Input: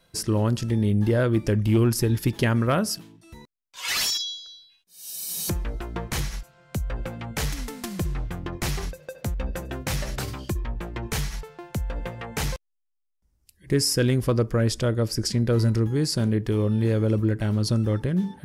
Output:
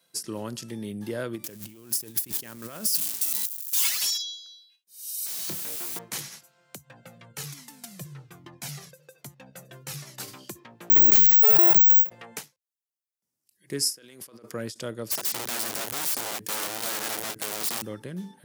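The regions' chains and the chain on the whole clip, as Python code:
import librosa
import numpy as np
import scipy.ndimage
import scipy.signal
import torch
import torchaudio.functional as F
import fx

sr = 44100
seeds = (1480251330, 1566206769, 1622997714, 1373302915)

y = fx.chain(x, sr, fx.crossing_spikes(level_db=-22.5),
    fx.over_compress(threshold_db=-26.0, ratio=-0.5), at=(1.44, 4.02))
y = fx.chain(y, sr, fx.lowpass(hz=4800.0, slope=12),
    fx.quant_dither(seeds[0], bits=6, dither='triangular'),
    fx.doubler(ms=28.0, db=-7.0), at=(5.26, 5.99))
y = fx.chain(y, sr, fx.peak_eq(hz=140.0, db=14.0, octaves=0.33),
    fx.comb_cascade(direction='falling', hz=1.2), at=(6.78, 10.2))
y = fx.chain(y, sr, fx.low_shelf(hz=230.0, db=6.0),
    fx.resample_bad(factor=2, down='filtered', up='zero_stuff'),
    fx.env_flatten(amount_pct=100), at=(10.9, 12.1))
y = fx.chain(y, sr, fx.highpass(hz=570.0, slope=6),
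    fx.over_compress(threshold_db=-39.0, ratio=-1.0), at=(13.96, 14.52))
y = fx.chain(y, sr, fx.high_shelf(hz=4500.0, db=9.0),
    fx.overflow_wrap(gain_db=22.0),
    fx.band_squash(depth_pct=40), at=(15.1, 17.82))
y = scipy.signal.sosfilt(scipy.signal.bessel(8, 200.0, 'highpass', norm='mag', fs=sr, output='sos'), y)
y = fx.high_shelf(y, sr, hz=4400.0, db=12.0)
y = fx.end_taper(y, sr, db_per_s=280.0)
y = F.gain(torch.from_numpy(y), -8.5).numpy()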